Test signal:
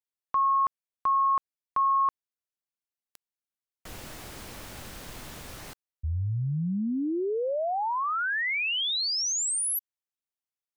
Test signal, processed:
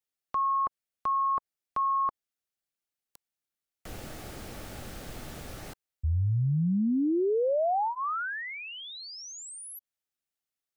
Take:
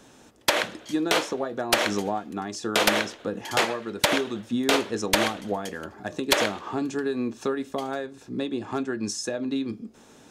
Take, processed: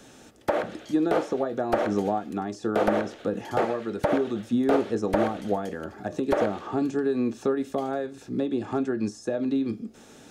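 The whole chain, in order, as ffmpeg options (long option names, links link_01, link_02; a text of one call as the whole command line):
ffmpeg -i in.wav -filter_complex "[0:a]bandreject=frequency=1000:width=5.6,acrossover=split=640|1200[link_01][link_02][link_03];[link_03]acompressor=threshold=-47dB:ratio=5:attack=1:release=113:detection=peak[link_04];[link_01][link_02][link_04]amix=inputs=3:normalize=0,volume=2.5dB" out.wav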